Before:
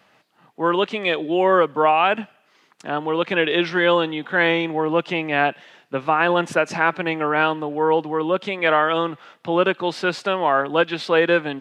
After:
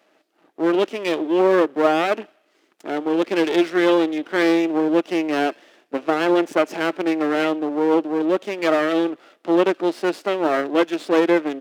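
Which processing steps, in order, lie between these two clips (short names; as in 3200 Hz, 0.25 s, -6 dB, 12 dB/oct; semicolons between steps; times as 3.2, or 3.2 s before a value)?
thirty-one-band EQ 630 Hz +7 dB, 1000 Hz -7 dB, 4000 Hz -4 dB; half-wave rectifier; resonant high-pass 320 Hz, resonance Q 3.6; gain -1 dB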